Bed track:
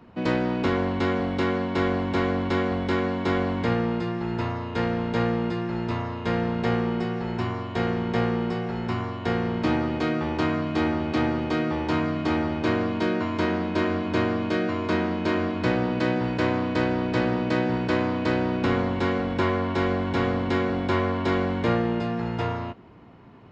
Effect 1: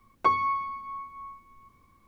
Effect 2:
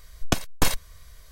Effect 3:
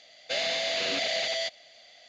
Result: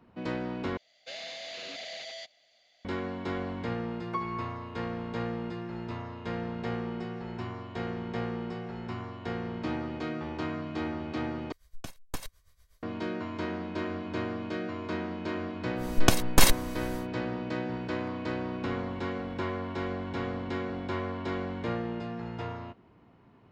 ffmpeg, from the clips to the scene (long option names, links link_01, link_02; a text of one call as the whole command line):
ffmpeg -i bed.wav -i cue0.wav -i cue1.wav -i cue2.wav -filter_complex "[1:a]asplit=2[link_01][link_02];[2:a]asplit=2[link_03][link_04];[0:a]volume=-9.5dB[link_05];[link_03]tremolo=f=8.2:d=0.75[link_06];[link_04]alimiter=level_in=9.5dB:limit=-1dB:release=50:level=0:latency=1[link_07];[link_02]acompressor=threshold=-43dB:ratio=6:attack=3.2:release=140:knee=1:detection=peak[link_08];[link_05]asplit=3[link_09][link_10][link_11];[link_09]atrim=end=0.774[link_12];[3:a]atrim=end=2.08,asetpts=PTS-STARTPTS,volume=-12dB[link_13];[link_10]atrim=start=2.846:end=11.524[link_14];[link_06]atrim=end=1.31,asetpts=PTS-STARTPTS,volume=-13dB[link_15];[link_11]atrim=start=12.826[link_16];[link_01]atrim=end=2.07,asetpts=PTS-STARTPTS,volume=-11dB,afade=type=in:duration=0.004:curve=hsin,afade=type=out:start_time=2.066:duration=0.004:curve=hsin,adelay=171549S[link_17];[link_07]atrim=end=1.31,asetpts=PTS-STARTPTS,volume=-3.5dB,afade=type=in:duration=0.1,afade=type=out:start_time=1.21:duration=0.1,adelay=15760[link_18];[link_08]atrim=end=2.07,asetpts=PTS-STARTPTS,volume=-9dB,afade=type=in:duration=0.004:curve=hsin,afade=type=out:start_time=2.066:duration=0.004:curve=hsin,adelay=17830[link_19];[link_12][link_13]acrossfade=duration=0.004:curve1=hsin:curve2=hsin[link_20];[link_20][link_14]acrossfade=duration=0.004:curve1=hsin:curve2=hsin[link_21];[link_21][link_15]acrossfade=duration=0.004:curve1=hsin:curve2=hsin[link_22];[link_22][link_16]acrossfade=duration=0.004:curve1=hsin:curve2=hsin[link_23];[link_23][link_17][link_18][link_19]amix=inputs=4:normalize=0" out.wav